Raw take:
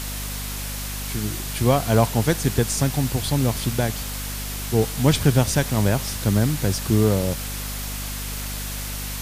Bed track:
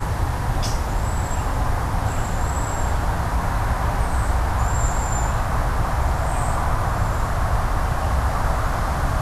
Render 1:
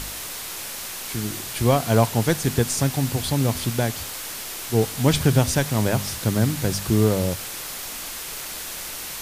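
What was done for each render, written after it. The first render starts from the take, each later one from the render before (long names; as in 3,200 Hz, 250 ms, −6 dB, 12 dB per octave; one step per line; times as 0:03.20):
hum removal 50 Hz, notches 5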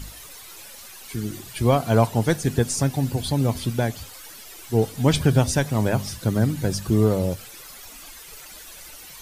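broadband denoise 13 dB, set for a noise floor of −33 dBFS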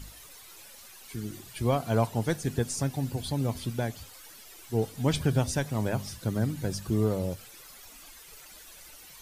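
level −7.5 dB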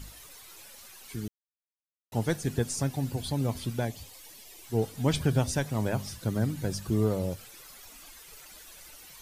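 0:01.28–0:02.12: silence
0:03.85–0:04.66: parametric band 1,400 Hz −12.5 dB 0.4 octaves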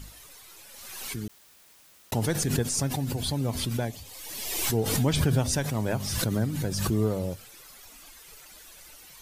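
background raised ahead of every attack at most 33 dB per second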